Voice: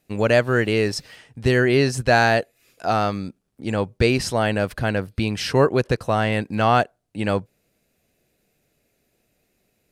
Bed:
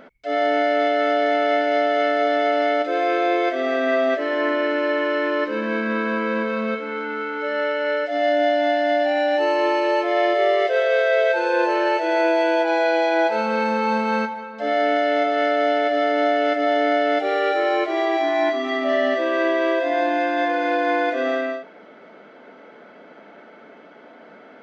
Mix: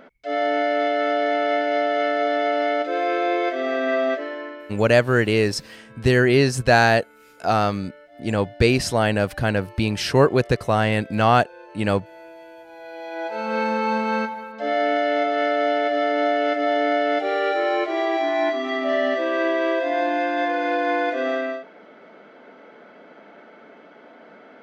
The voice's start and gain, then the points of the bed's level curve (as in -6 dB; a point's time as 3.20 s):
4.60 s, +1.0 dB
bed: 4.11 s -2 dB
4.83 s -24.5 dB
12.69 s -24.5 dB
13.57 s -1.5 dB